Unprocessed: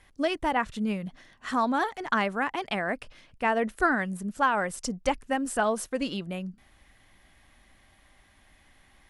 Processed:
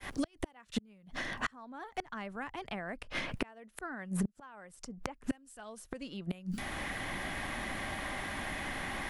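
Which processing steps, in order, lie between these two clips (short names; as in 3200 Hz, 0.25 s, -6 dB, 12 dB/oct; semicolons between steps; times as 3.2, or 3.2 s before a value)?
opening faded in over 0.88 s; flipped gate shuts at -27 dBFS, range -38 dB; three-band squash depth 100%; gain +13 dB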